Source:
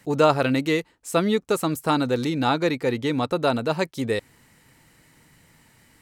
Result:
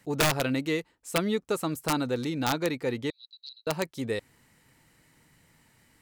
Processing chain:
wrap-around overflow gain 10.5 dB
0:03.10–0:03.67: flat-topped band-pass 4,200 Hz, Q 6.8
level −6 dB

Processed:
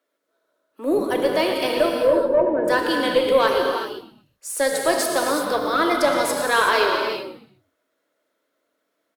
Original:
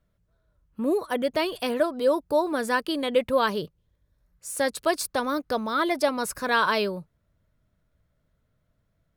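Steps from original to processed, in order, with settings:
0:01.89–0:02.68: expanding power law on the bin magnitudes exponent 2.7
in parallel at −4 dB: soft clipping −18.5 dBFS, distortion −15 dB
on the sum: Chebyshev high-pass filter 280 Hz, order 5
on a send: echo with shifted repeats 118 ms, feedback 34%, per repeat −91 Hz, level −14 dB
on the sum: reverb whose tail is shaped and stops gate 410 ms flat, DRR 0.5 dB
harmonic generator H 4 −27 dB, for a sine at −4.5 dBFS

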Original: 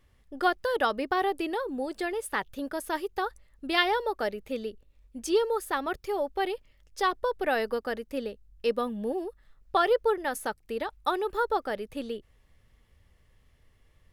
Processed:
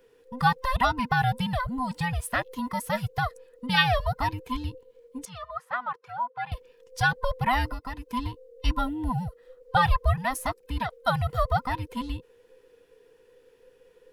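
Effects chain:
frequency inversion band by band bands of 500 Hz
0:05.25–0:06.52: resonant band-pass 1,200 Hz, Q 1.8
0:07.66–0:08.08: downward compressor 6 to 1, threshold −34 dBFS, peak gain reduction 8.5 dB
level +3 dB

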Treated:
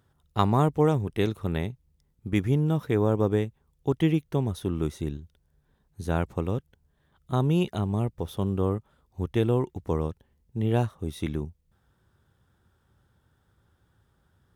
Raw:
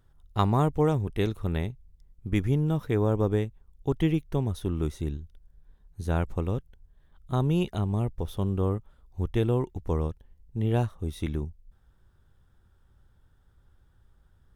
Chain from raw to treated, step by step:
high-pass filter 100 Hz 12 dB per octave
level +2 dB

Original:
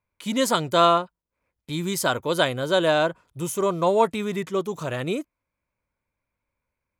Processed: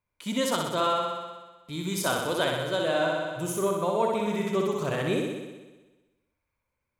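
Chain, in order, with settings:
flutter between parallel walls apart 10.7 metres, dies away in 1.2 s
speech leveller within 4 dB 0.5 s
level −6.5 dB

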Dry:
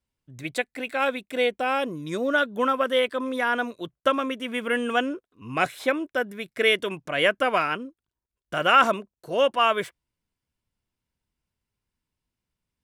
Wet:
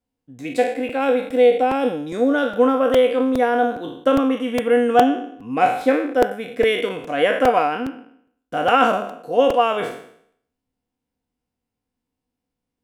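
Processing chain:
peak hold with a decay on every bin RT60 0.65 s
hollow resonant body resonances 270/480/730 Hz, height 16 dB, ringing for 50 ms
regular buffer underruns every 0.41 s, samples 128, repeat, from 0:00.89
level −4.5 dB

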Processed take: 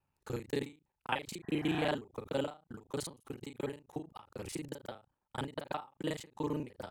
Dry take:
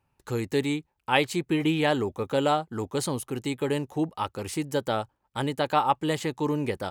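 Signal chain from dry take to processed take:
reversed piece by piece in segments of 33 ms
healed spectral selection 0:01.38–0:01.85, 640–2,000 Hz both
every ending faded ahead of time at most 190 dB per second
level −8 dB

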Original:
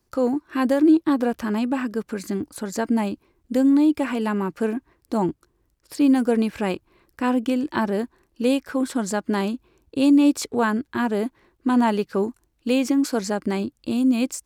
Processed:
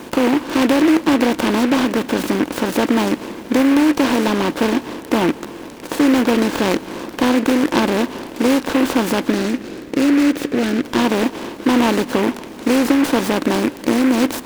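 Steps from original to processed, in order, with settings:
compressor on every frequency bin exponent 0.4
0:09.32–0:10.84: phaser with its sweep stopped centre 2,500 Hz, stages 4
on a send at −20 dB: convolution reverb RT60 3.8 s, pre-delay 107 ms
on the sum: short delay modulated by noise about 1,600 Hz, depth 0.086 ms

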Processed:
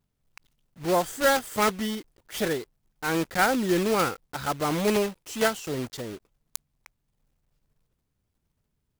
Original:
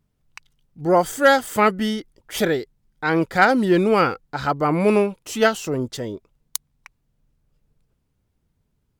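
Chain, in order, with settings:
one scale factor per block 3 bits
level −7 dB

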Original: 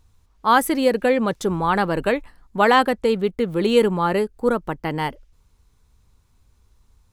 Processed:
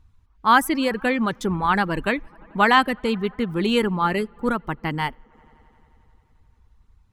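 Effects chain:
bass and treble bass −1 dB, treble −6 dB
delay with a low-pass on its return 88 ms, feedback 83%, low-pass 3,200 Hz, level −23.5 dB
reverb reduction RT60 0.54 s
parametric band 520 Hz −10.5 dB 1.2 octaves
one half of a high-frequency compander decoder only
level +3.5 dB

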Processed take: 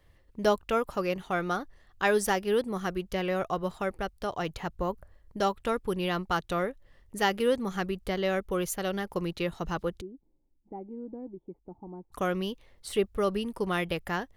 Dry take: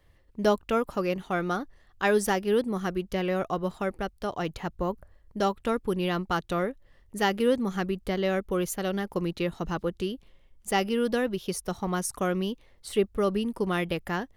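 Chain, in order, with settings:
dynamic equaliser 250 Hz, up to −5 dB, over −41 dBFS, Q 1.2
0:10.01–0:12.12: formant resonators in series u

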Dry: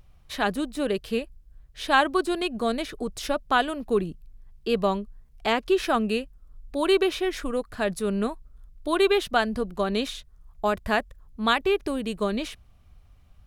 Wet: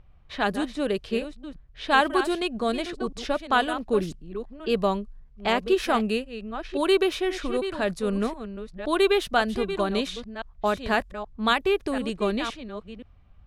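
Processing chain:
delay that plays each chunk backwards 521 ms, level −10.5 dB
low-pass that shuts in the quiet parts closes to 2,600 Hz, open at −20 dBFS

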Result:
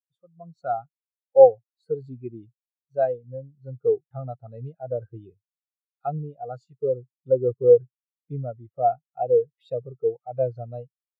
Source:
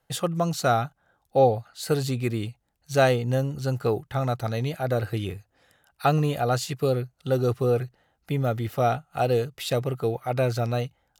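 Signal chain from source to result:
high-pass filter 170 Hz 6 dB per octave
automatic gain control gain up to 14 dB
every bin expanded away from the loudest bin 2.5 to 1
level −1 dB

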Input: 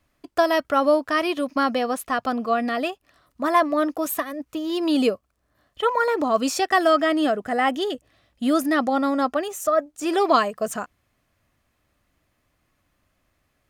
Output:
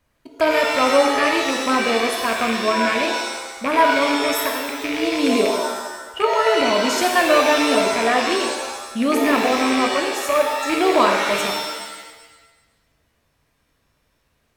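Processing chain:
loose part that buzzes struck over −36 dBFS, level −15 dBFS
speed change −6%
reverb with rising layers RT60 1.1 s, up +7 semitones, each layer −2 dB, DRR 1.5 dB

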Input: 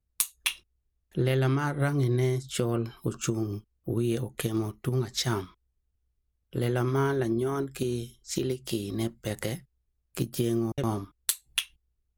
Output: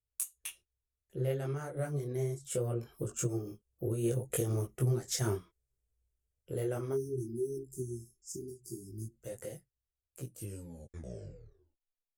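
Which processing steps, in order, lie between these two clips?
turntable brake at the end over 2.00 s
source passing by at 0:04.72, 6 m/s, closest 9 metres
graphic EQ with 10 bands 125 Hz +4 dB, 250 Hz −7 dB, 500 Hz +8 dB, 1,000 Hz −8 dB, 2,000 Hz −3 dB, 4,000 Hz −12 dB, 8,000 Hz +7 dB
time-frequency box erased 0:06.94–0:09.13, 430–4,600 Hz
low-shelf EQ 330 Hz −4 dB
micro pitch shift up and down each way 23 cents
level +2.5 dB

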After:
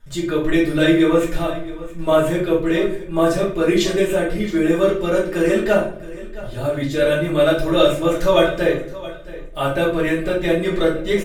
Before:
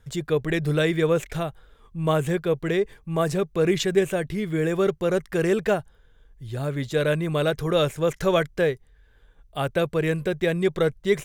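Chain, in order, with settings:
comb filter 3.3 ms, depth 63%
repeating echo 671 ms, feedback 21%, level −17 dB
convolution reverb RT60 0.50 s, pre-delay 5 ms, DRR −5.5 dB
level −2 dB

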